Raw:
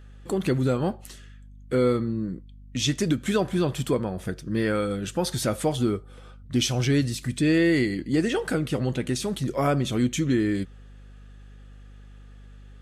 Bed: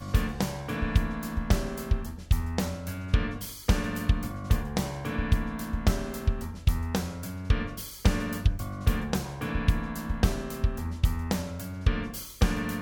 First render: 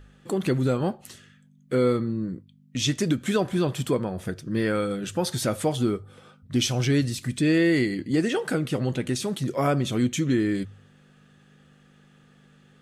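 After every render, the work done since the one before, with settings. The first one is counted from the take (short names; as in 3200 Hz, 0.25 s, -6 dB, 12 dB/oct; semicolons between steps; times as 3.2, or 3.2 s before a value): de-hum 50 Hz, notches 2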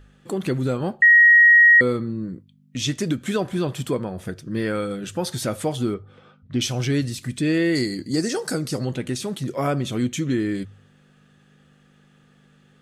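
1.02–1.81 bleep 1890 Hz -8.5 dBFS; 5.94–6.61 LPF 3700 Hz; 7.75–8.85 resonant high shelf 3900 Hz +7.5 dB, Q 3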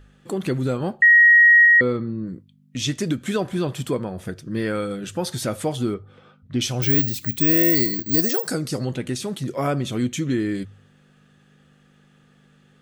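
1.65–2.27 air absorption 130 m; 6.82–8.48 careless resampling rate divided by 2×, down filtered, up zero stuff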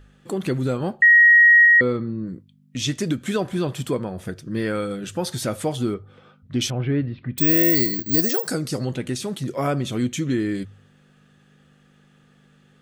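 6.7–7.38 Gaussian blur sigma 3.7 samples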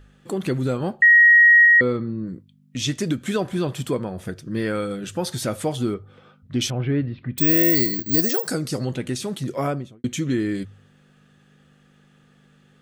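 9.57–10.04 studio fade out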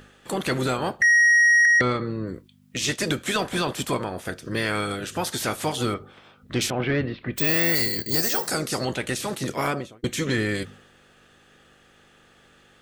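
spectral limiter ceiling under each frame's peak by 18 dB; soft clip -13.5 dBFS, distortion -13 dB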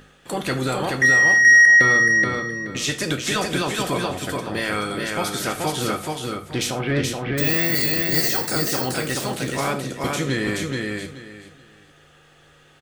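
feedback echo 0.427 s, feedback 22%, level -3 dB; non-linear reverb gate 0.13 s falling, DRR 6.5 dB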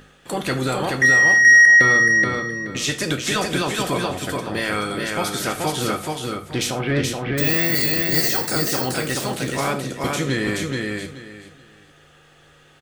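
gain +1 dB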